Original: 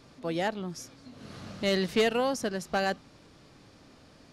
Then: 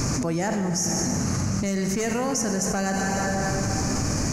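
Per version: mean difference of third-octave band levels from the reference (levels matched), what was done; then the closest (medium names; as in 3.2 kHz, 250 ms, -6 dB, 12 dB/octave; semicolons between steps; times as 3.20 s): 13.0 dB: FFT filter 120 Hz 0 dB, 530 Hz -11 dB, 960 Hz -8 dB, 2.4 kHz -10 dB, 3.5 kHz -25 dB, 6.3 kHz +8 dB, 8.9 kHz -3 dB; plate-style reverb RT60 2.3 s, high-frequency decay 0.8×, DRR 6.5 dB; level flattener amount 100%; trim +4 dB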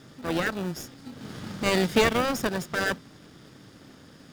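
4.5 dB: comb filter that takes the minimum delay 0.58 ms; high-pass 110 Hz; in parallel at -6 dB: sample-and-hold 41×; on the sum: trim +5 dB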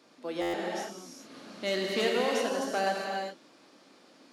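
7.5 dB: high-pass 230 Hz 24 dB/octave; gated-style reverb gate 430 ms flat, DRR -1.5 dB; buffer glitch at 0.41 s, samples 512, times 10; trim -4 dB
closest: second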